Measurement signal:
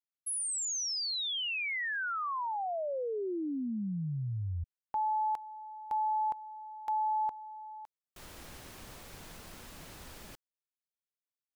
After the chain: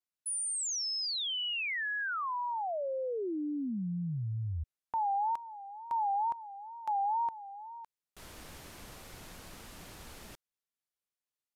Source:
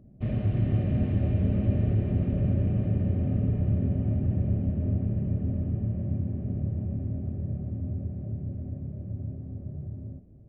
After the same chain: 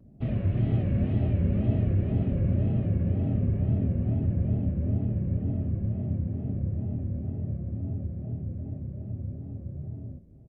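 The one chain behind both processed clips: wow and flutter 140 cents; resampled via 32 kHz

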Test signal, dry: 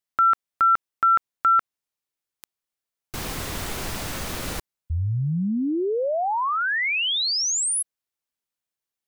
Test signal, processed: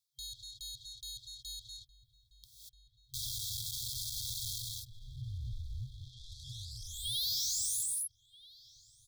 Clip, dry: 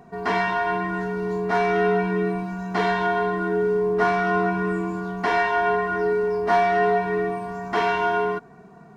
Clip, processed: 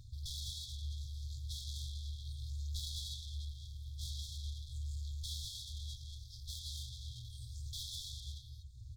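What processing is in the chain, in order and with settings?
ten-band graphic EQ 125 Hz +5 dB, 250 Hz +8 dB, 500 Hz -4 dB, 1 kHz -4 dB, 2 kHz -11 dB, 4 kHz +8 dB; reverb removal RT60 0.84 s; peaking EQ 270 Hz -13.5 dB 0.82 oct; gated-style reverb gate 260 ms rising, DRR 3 dB; hard clipper -21.5 dBFS; ring modulator 260 Hz; saturation -38 dBFS; echo from a far wall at 220 m, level -8 dB; FFT band-reject 130–3200 Hz; trim +5 dB

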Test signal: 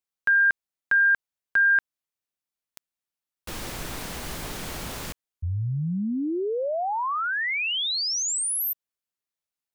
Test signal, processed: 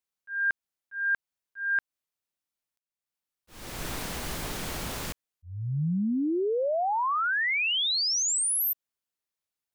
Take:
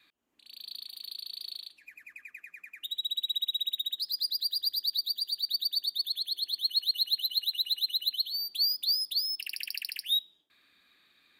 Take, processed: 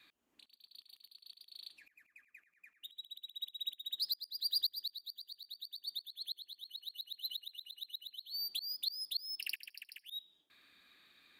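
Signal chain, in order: slow attack 401 ms

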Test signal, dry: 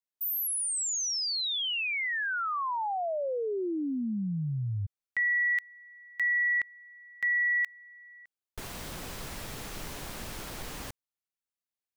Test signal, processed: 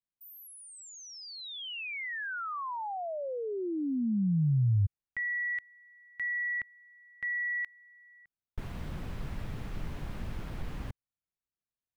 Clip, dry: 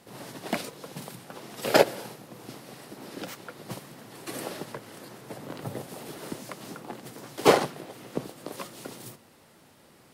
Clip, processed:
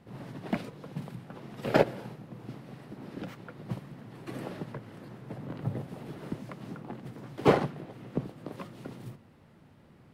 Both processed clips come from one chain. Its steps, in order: tone controls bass +12 dB, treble -14 dB; trim -5 dB

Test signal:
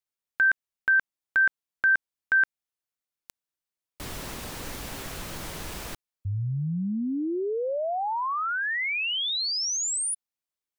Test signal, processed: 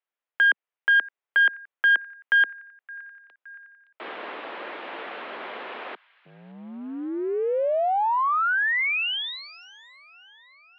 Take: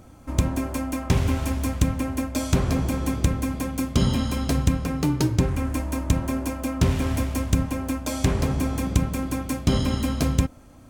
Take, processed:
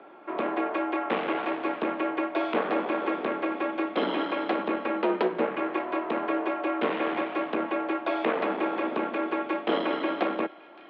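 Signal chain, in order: on a send: feedback echo behind a high-pass 568 ms, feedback 59%, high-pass 1.5 kHz, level -21.5 dB; on the sum: one-sided clip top -26 dBFS; three-band isolator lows -18 dB, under 310 Hz, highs -15 dB, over 2.9 kHz; mistuned SSB +59 Hz 150–3600 Hz; trim +6 dB

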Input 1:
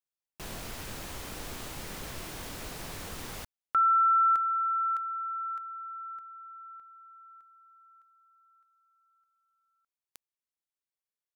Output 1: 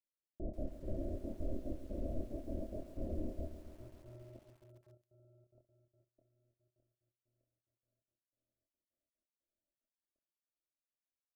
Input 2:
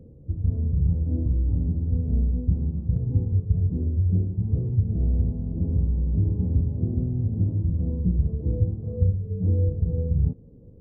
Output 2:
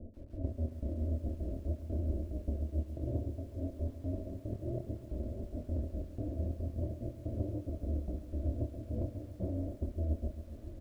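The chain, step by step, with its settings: square wave that keeps the level; Chebyshev low-pass 660 Hz, order 6; comb 3.3 ms, depth 86%; compression 20:1, threshold -27 dBFS; trance gate "x.x.xx.x..xxx" 182 bpm -24 dB; early reflections 26 ms -4.5 dB, 67 ms -15 dB; bit-crushed delay 137 ms, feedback 80%, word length 9-bit, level -13 dB; trim -5 dB

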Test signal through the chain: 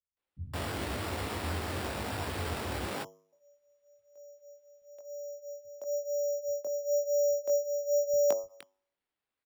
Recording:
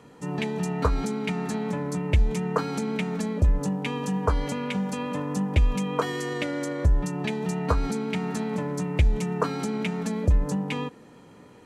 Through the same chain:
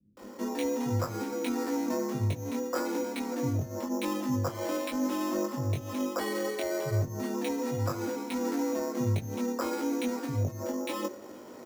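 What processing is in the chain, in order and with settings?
de-hum 100.2 Hz, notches 12; frequency shift +64 Hz; peaking EQ 160 Hz -8 dB 0.81 oct; reverse; compression 8:1, threshold -33 dBFS; reverse; chorus 0.99 Hz, delay 19 ms, depth 2.9 ms; tilt shelf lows +4 dB, about 1.5 kHz; sample-and-hold 7×; bands offset in time lows, highs 170 ms, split 150 Hz; trim +5.5 dB

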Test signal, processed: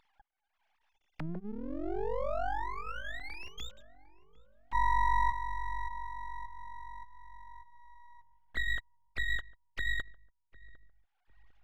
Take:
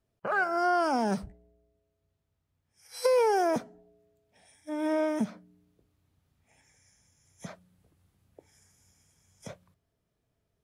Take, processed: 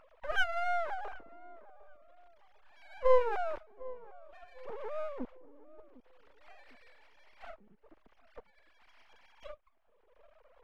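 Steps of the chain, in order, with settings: formants replaced by sine waves; upward compressor, threshold -32 dBFS; half-wave rectifier; treble shelf 2.7 kHz -11 dB; on a send: filtered feedback delay 753 ms, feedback 45%, low-pass 850 Hz, level -18 dB

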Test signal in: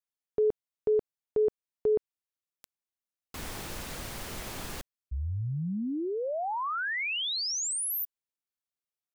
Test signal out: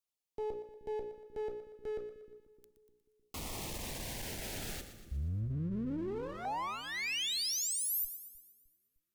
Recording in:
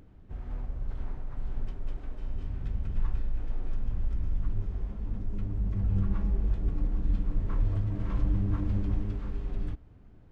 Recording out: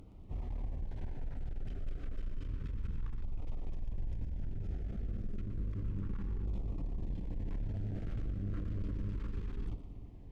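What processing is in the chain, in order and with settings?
hum notches 60/120/180/240/300/360/420/480/540/600 Hz; one-sided clip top -38.5 dBFS, bottom -20 dBFS; peak limiter -32.5 dBFS; two-band feedback delay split 350 Hz, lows 305 ms, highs 119 ms, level -11 dB; LFO notch saw down 0.31 Hz 620–1700 Hz; trim +1.5 dB

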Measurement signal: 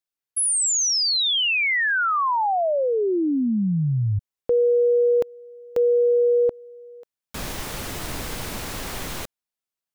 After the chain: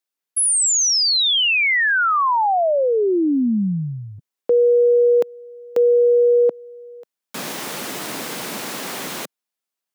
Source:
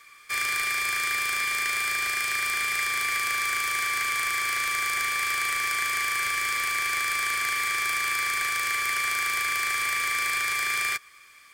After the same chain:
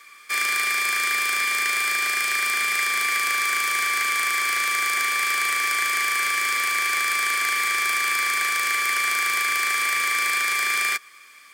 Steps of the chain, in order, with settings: high-pass 180 Hz 24 dB/octave; trim +4 dB

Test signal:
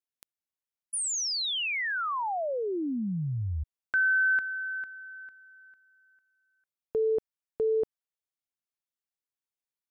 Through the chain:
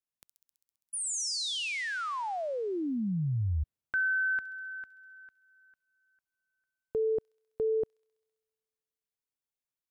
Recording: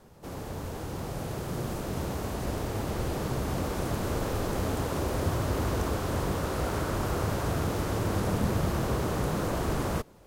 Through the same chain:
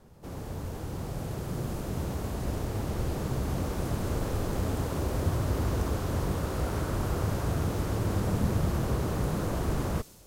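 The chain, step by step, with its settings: bass shelf 240 Hz +6.5 dB; on a send: feedback echo behind a high-pass 66 ms, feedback 79%, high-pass 5.1 kHz, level -7 dB; on the sum: trim -4 dB

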